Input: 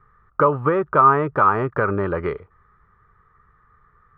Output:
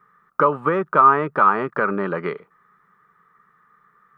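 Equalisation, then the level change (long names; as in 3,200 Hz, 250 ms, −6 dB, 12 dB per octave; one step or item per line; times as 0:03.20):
spectral tilt +2.5 dB per octave
low shelf with overshoot 120 Hz −14 dB, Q 3
0.0 dB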